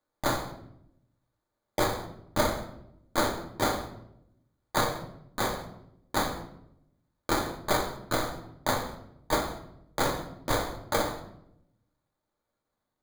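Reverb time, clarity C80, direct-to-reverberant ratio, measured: 0.80 s, 12.5 dB, 1.5 dB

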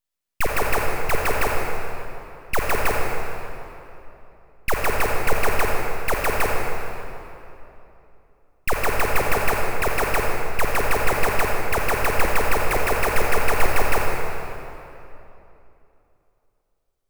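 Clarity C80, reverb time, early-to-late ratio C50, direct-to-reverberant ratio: 1.0 dB, 3.0 s, -0.5 dB, -1.0 dB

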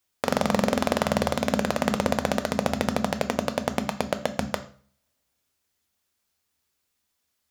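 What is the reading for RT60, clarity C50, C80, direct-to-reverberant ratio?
0.45 s, 14.0 dB, 18.5 dB, 8.5 dB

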